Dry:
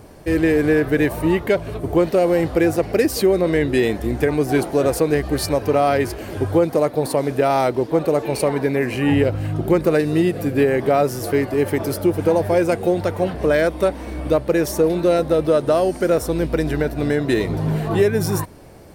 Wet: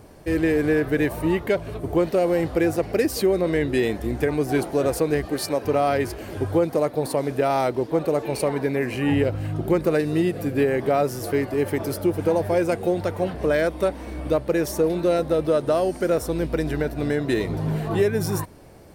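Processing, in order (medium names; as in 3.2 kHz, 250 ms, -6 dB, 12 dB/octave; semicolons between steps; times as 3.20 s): 5.25–5.65 s: high-pass 180 Hz 12 dB/octave; trim -4 dB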